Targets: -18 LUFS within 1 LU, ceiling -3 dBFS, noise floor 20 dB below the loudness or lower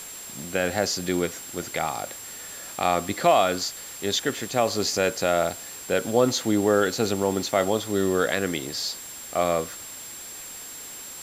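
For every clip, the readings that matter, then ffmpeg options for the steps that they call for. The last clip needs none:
steady tone 7.5 kHz; tone level -39 dBFS; noise floor -39 dBFS; noise floor target -45 dBFS; loudness -25.0 LUFS; peak level -7.0 dBFS; loudness target -18.0 LUFS
-> -af "bandreject=f=7500:w=30"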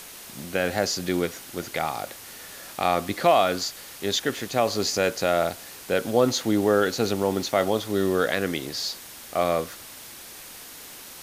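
steady tone not found; noise floor -43 dBFS; noise floor target -45 dBFS
-> -af "afftdn=nr=6:nf=-43"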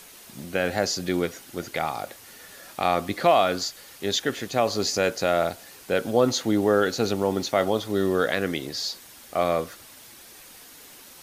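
noise floor -48 dBFS; loudness -25.0 LUFS; peak level -7.0 dBFS; loudness target -18.0 LUFS
-> -af "volume=2.24,alimiter=limit=0.708:level=0:latency=1"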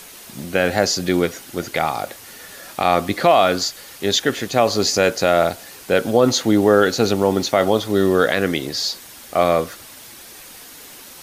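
loudness -18.5 LUFS; peak level -3.0 dBFS; noise floor -41 dBFS

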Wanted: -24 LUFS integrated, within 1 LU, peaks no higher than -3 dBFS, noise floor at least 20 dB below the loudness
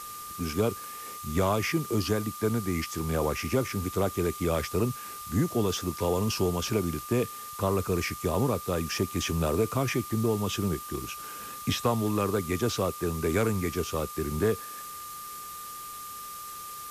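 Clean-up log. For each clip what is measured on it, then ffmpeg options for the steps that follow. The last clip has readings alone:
steady tone 1.2 kHz; tone level -40 dBFS; noise floor -41 dBFS; noise floor target -50 dBFS; loudness -29.5 LUFS; peak level -13.5 dBFS; loudness target -24.0 LUFS
-> -af "bandreject=f=1200:w=30"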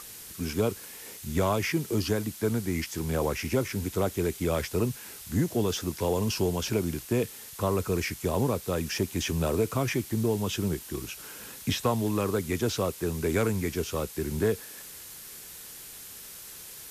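steady tone not found; noise floor -45 dBFS; noise floor target -50 dBFS
-> -af "afftdn=nr=6:nf=-45"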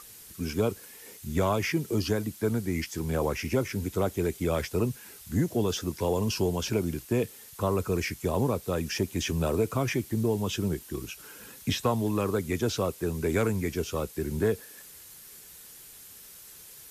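noise floor -49 dBFS; noise floor target -50 dBFS
-> -af "afftdn=nr=6:nf=-49"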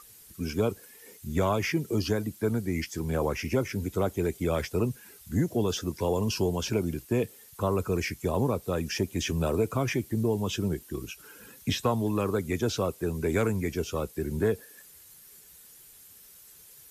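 noise floor -53 dBFS; loudness -29.5 LUFS; peak level -14.0 dBFS; loudness target -24.0 LUFS
-> -af "volume=1.88"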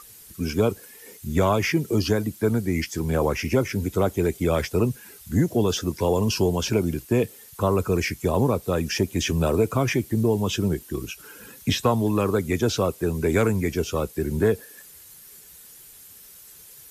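loudness -24.0 LUFS; peak level -8.5 dBFS; noise floor -47 dBFS

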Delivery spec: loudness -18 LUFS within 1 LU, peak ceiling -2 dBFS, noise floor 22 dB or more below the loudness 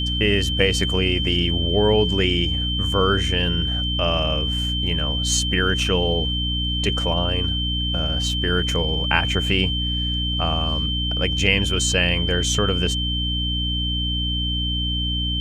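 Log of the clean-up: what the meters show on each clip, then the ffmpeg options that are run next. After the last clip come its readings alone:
hum 60 Hz; highest harmonic 300 Hz; hum level -23 dBFS; steady tone 3.1 kHz; tone level -24 dBFS; loudness -20.5 LUFS; peak level -1.5 dBFS; loudness target -18.0 LUFS
-> -af "bandreject=f=60:t=h:w=6,bandreject=f=120:t=h:w=6,bandreject=f=180:t=h:w=6,bandreject=f=240:t=h:w=6,bandreject=f=300:t=h:w=6"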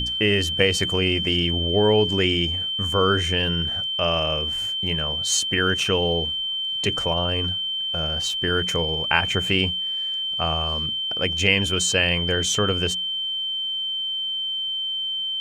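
hum not found; steady tone 3.1 kHz; tone level -24 dBFS
-> -af "bandreject=f=3100:w=30"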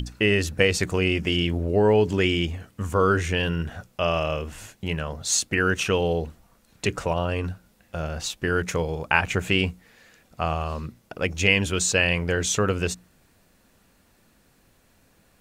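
steady tone not found; loudness -24.0 LUFS; peak level -3.0 dBFS; loudness target -18.0 LUFS
-> -af "volume=2,alimiter=limit=0.794:level=0:latency=1"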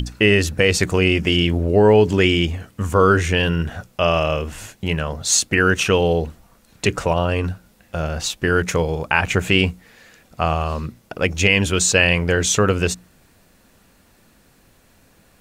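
loudness -18.5 LUFS; peak level -2.0 dBFS; noise floor -55 dBFS

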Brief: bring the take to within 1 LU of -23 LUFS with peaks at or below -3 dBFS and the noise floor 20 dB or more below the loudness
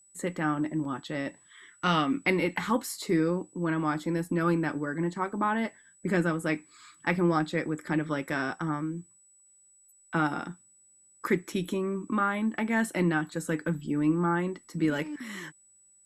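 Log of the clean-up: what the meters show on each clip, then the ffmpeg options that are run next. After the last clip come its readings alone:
steady tone 7.9 kHz; tone level -58 dBFS; loudness -29.5 LUFS; peak level -10.5 dBFS; loudness target -23.0 LUFS
-> -af "bandreject=f=7900:w=30"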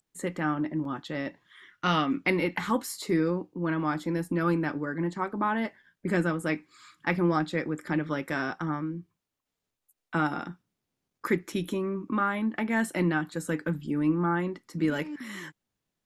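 steady tone not found; loudness -29.5 LUFS; peak level -10.5 dBFS; loudness target -23.0 LUFS
-> -af "volume=2.11"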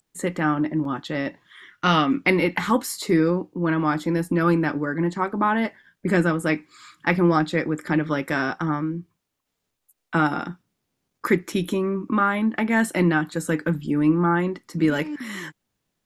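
loudness -23.0 LUFS; peak level -4.0 dBFS; noise floor -79 dBFS

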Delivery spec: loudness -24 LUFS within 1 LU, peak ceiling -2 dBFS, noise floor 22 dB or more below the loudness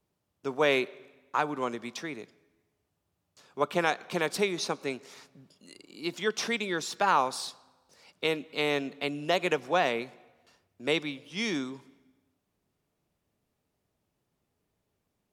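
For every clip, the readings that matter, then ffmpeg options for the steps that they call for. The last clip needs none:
loudness -30.5 LUFS; peak level -10.5 dBFS; loudness target -24.0 LUFS
-> -af "volume=2.11"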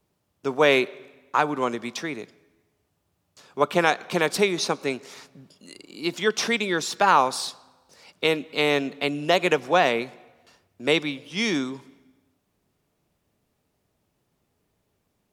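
loudness -24.0 LUFS; peak level -4.0 dBFS; noise floor -74 dBFS

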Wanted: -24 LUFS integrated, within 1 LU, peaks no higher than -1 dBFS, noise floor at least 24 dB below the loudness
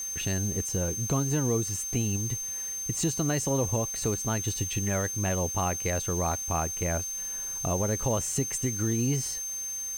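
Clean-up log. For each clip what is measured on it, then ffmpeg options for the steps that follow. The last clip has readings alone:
steady tone 6.3 kHz; tone level -32 dBFS; noise floor -35 dBFS; noise floor target -53 dBFS; loudness -28.5 LUFS; peak level -14.5 dBFS; loudness target -24.0 LUFS
-> -af "bandreject=f=6300:w=30"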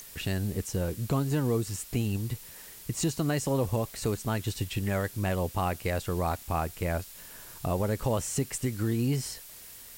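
steady tone not found; noise floor -48 dBFS; noise floor target -55 dBFS
-> -af "afftdn=nr=7:nf=-48"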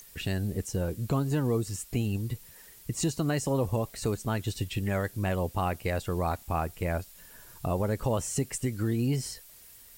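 noise floor -52 dBFS; noise floor target -55 dBFS
-> -af "afftdn=nr=6:nf=-52"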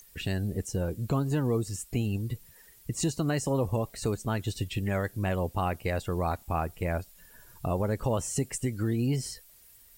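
noise floor -56 dBFS; loudness -31.0 LUFS; peak level -16.0 dBFS; loudness target -24.0 LUFS
-> -af "volume=2.24"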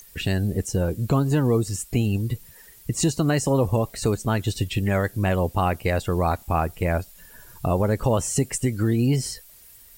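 loudness -24.0 LUFS; peak level -9.0 dBFS; noise floor -49 dBFS

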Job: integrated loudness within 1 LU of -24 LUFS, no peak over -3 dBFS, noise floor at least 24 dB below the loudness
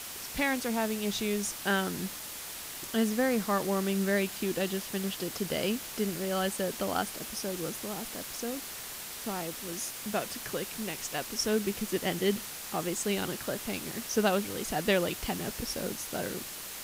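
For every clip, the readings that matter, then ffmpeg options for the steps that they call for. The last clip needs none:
noise floor -42 dBFS; noise floor target -56 dBFS; loudness -32.0 LUFS; peak level -13.0 dBFS; loudness target -24.0 LUFS
-> -af "afftdn=nr=14:nf=-42"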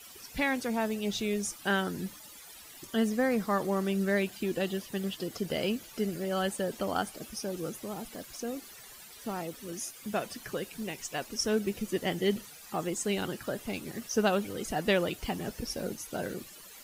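noise floor -50 dBFS; noise floor target -57 dBFS
-> -af "afftdn=nr=7:nf=-50"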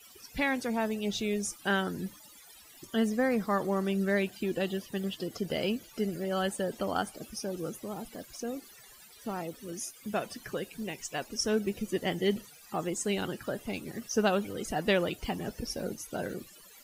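noise floor -54 dBFS; noise floor target -57 dBFS
-> -af "afftdn=nr=6:nf=-54"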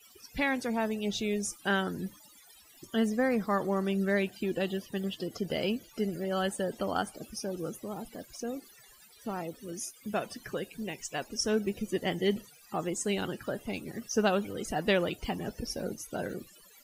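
noise floor -57 dBFS; loudness -33.0 LUFS; peak level -13.5 dBFS; loudness target -24.0 LUFS
-> -af "volume=2.82"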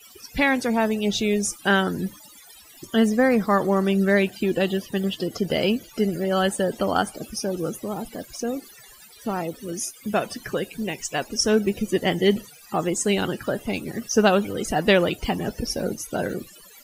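loudness -24.0 LUFS; peak level -4.5 dBFS; noise floor -48 dBFS

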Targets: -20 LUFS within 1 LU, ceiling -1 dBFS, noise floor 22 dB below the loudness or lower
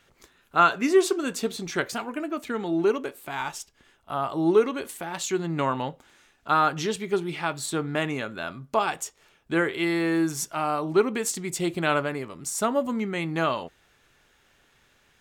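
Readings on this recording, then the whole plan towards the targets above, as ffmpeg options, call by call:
loudness -26.5 LUFS; peak level -6.5 dBFS; loudness target -20.0 LUFS
-> -af "volume=2.11,alimiter=limit=0.891:level=0:latency=1"

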